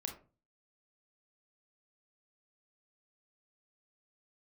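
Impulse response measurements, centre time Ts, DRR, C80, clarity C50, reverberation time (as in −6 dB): 17 ms, 3.5 dB, 15.0 dB, 8.0 dB, 0.35 s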